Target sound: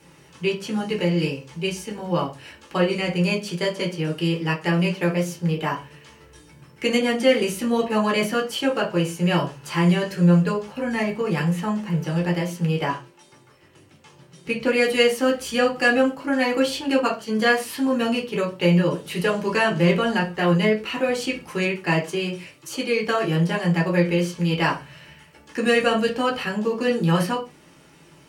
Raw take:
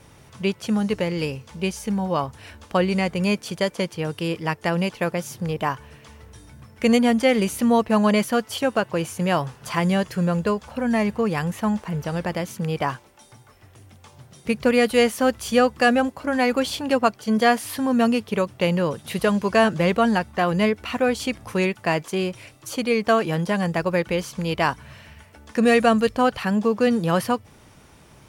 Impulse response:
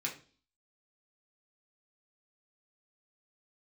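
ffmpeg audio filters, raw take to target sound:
-filter_complex "[0:a]asettb=1/sr,asplit=3[s0][s1][s2];[s0]atrim=end=12.884[s3];[s1]atrim=start=12.88:end=14.78,asetpts=PTS-STARTPTS,afade=t=in:d=0.004:c=qsin,afade=t=out:st=1.896:d=0.004:c=qsin,highshelf=f=10000:g=-7[s4];[s2]atrim=start=14.776[s5];[s3][s4]acrossfade=d=0.004:c1=hsin:c2=qsin[s6];[s6][s5]acrossfade=d=0.004:c1=qsin:c2=hsin[s7];[1:a]atrim=start_sample=2205,afade=t=out:st=0.25:d=0.01,atrim=end_sample=11466,asetrate=52920,aresample=44100[s8];[s7][s8]afir=irnorm=-1:irlink=0"

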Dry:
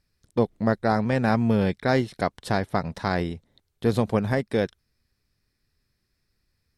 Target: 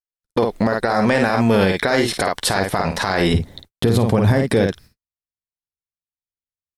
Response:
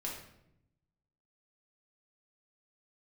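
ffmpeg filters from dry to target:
-af "asetnsamples=n=441:p=0,asendcmd='3.34 equalizer g 3',equalizer=f=120:w=0.42:g=-12.5,acompressor=threshold=0.0447:ratio=12,highshelf=f=9400:g=4.5,agate=range=0.00126:threshold=0.00112:ratio=16:detection=peak,aecho=1:1:11|52:0.211|0.398,alimiter=level_in=23.7:limit=0.891:release=50:level=0:latency=1,volume=0.501"

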